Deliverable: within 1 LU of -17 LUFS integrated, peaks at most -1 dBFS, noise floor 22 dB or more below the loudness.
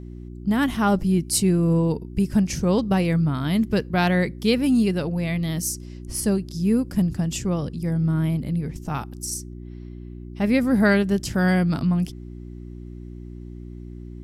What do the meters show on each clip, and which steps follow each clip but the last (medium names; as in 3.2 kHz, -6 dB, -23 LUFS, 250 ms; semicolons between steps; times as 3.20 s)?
hum 60 Hz; highest harmonic 360 Hz; hum level -36 dBFS; loudness -22.5 LUFS; peak level -6.0 dBFS; loudness target -17.0 LUFS
-> de-hum 60 Hz, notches 6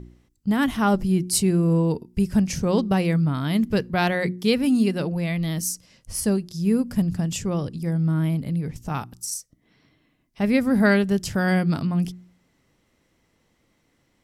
hum not found; loudness -23.0 LUFS; peak level -6.0 dBFS; loudness target -17.0 LUFS
-> trim +6 dB; peak limiter -1 dBFS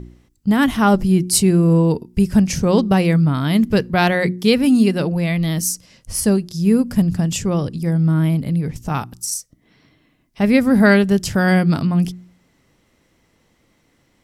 loudness -17.0 LUFS; peak level -1.0 dBFS; noise floor -61 dBFS